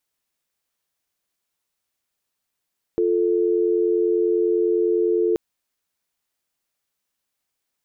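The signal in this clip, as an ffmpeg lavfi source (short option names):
-f lavfi -i "aevalsrc='0.106*(sin(2*PI*350*t)+sin(2*PI*440*t))':d=2.38:s=44100"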